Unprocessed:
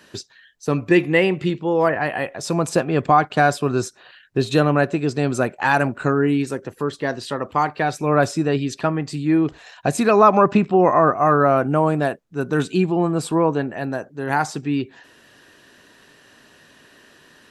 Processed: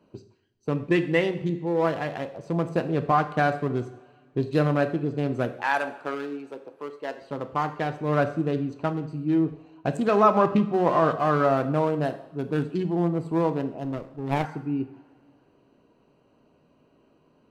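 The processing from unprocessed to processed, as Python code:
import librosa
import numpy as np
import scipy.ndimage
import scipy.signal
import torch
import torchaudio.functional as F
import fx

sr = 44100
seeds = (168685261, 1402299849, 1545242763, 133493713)

y = fx.wiener(x, sr, points=25)
y = fx.highpass(y, sr, hz=490.0, slope=12, at=(5.54, 7.22))
y = fx.rev_double_slope(y, sr, seeds[0], early_s=0.61, late_s=2.4, knee_db=-20, drr_db=8.0)
y = fx.running_max(y, sr, window=17, at=(13.84, 14.45))
y = y * 10.0 ** (-6.0 / 20.0)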